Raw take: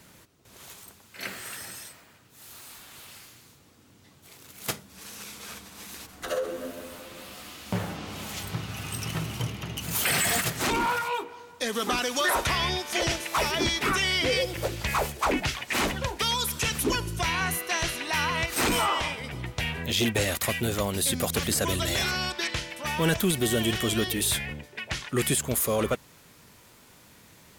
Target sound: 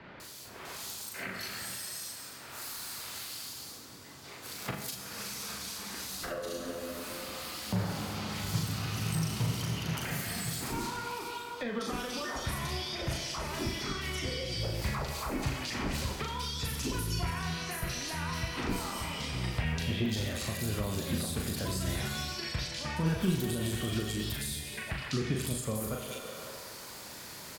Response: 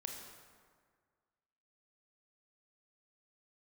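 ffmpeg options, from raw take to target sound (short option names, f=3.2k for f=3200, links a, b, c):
-filter_complex "[0:a]lowshelf=f=330:g=-6.5,acrossover=split=2700[a][b];[b]adelay=200[c];[a][c]amix=inputs=2:normalize=0,alimiter=limit=-21.5dB:level=0:latency=1:release=197,equalizer=f=4.6k:w=3.5:g=6,asplit=2[d][e];[1:a]atrim=start_sample=2205,lowshelf=f=270:g=-7,adelay=38[f];[e][f]afir=irnorm=-1:irlink=0,volume=2dB[g];[d][g]amix=inputs=2:normalize=0,acrossover=split=230[h][i];[i]acompressor=threshold=-45dB:ratio=5[j];[h][j]amix=inputs=2:normalize=0,volume=7dB"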